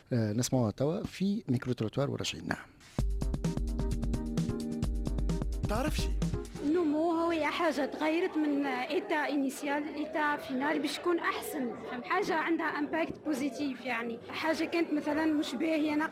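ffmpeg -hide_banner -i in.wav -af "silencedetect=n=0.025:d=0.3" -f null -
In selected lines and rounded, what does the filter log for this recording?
silence_start: 2.54
silence_end: 2.99 | silence_duration: 0.45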